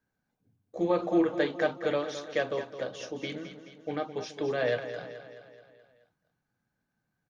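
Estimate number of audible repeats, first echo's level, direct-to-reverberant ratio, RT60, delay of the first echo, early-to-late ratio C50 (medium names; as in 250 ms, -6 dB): 5, -11.0 dB, no reverb, no reverb, 214 ms, no reverb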